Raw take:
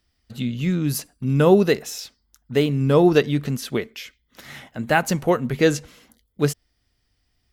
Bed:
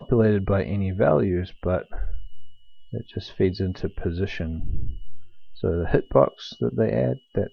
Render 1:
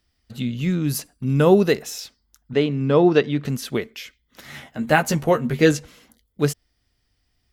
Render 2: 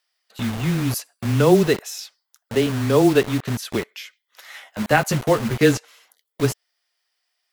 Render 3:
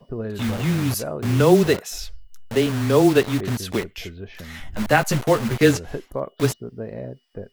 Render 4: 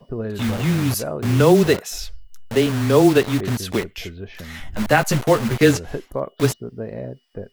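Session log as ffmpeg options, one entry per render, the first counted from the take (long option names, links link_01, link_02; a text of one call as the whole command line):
ffmpeg -i in.wav -filter_complex "[0:a]asettb=1/sr,asplit=3[link_01][link_02][link_03];[link_01]atrim=end=2.534[link_04];[link_02]atrim=start=2.53:end=3.45,asetpts=PTS-STARTPTS,afade=type=in:duration=0.004:curve=qsin,afade=type=out:start_time=0.916:duration=0.004:curve=qsin,highpass=140,lowpass=4200[link_05];[link_03]atrim=start=3.446[link_06];[link_04][link_05]acrossfade=duration=0.004:curve1=hsin:curve2=qsin[link_07];[link_07][link_06]acrossfade=duration=0.004:curve1=qsin:curve2=hsin,asettb=1/sr,asplit=3[link_08][link_09][link_10];[link_08]atrim=end=4.524[link_11];[link_09]atrim=start=4.52:end=5.72,asetpts=PTS-STARTPTS,afade=type=in:duration=0.004:curve=qsin,afade=type=out:start_time=1.196:duration=0.004:curve=qsin,asplit=2[link_12][link_13];[link_13]adelay=13,volume=-5dB[link_14];[link_12][link_14]amix=inputs=2:normalize=0,atrim=end_sample=52920[link_15];[link_10]atrim=start=5.716[link_16];[link_11][link_15]acrossfade=duration=0.004:curve1=hsin:curve2=qsin[link_17];[link_17][link_16]acrossfade=duration=0.004:curve1=qsin:curve2=hsin" out.wav
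ffmpeg -i in.wav -filter_complex "[0:a]afreqshift=-15,acrossover=split=560[link_01][link_02];[link_01]acrusher=bits=4:mix=0:aa=0.000001[link_03];[link_03][link_02]amix=inputs=2:normalize=0" out.wav
ffmpeg -i in.wav -i bed.wav -filter_complex "[1:a]volume=-10.5dB[link_01];[0:a][link_01]amix=inputs=2:normalize=0" out.wav
ffmpeg -i in.wav -af "volume=2dB,alimiter=limit=-3dB:level=0:latency=1" out.wav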